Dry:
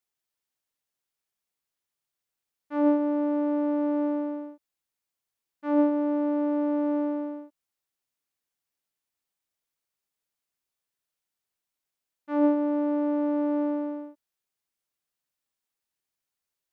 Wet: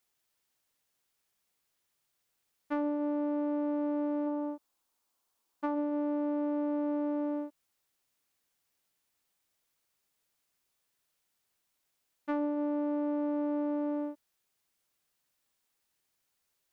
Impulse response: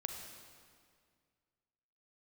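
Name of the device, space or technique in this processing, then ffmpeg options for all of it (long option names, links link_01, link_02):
serial compression, peaks first: -filter_complex "[0:a]asplit=3[link_01][link_02][link_03];[link_01]afade=type=out:start_time=4.26:duration=0.02[link_04];[link_02]equalizer=frequency=125:width_type=o:width=1:gain=-12,equalizer=frequency=250:width_type=o:width=1:gain=4,equalizer=frequency=1000:width_type=o:width=1:gain=7,equalizer=frequency=2000:width_type=o:width=1:gain=-5,afade=type=in:start_time=4.26:duration=0.02,afade=type=out:start_time=5.74:duration=0.02[link_05];[link_03]afade=type=in:start_time=5.74:duration=0.02[link_06];[link_04][link_05][link_06]amix=inputs=3:normalize=0,acompressor=threshold=-33dB:ratio=5,acompressor=threshold=-38dB:ratio=2.5,volume=7dB"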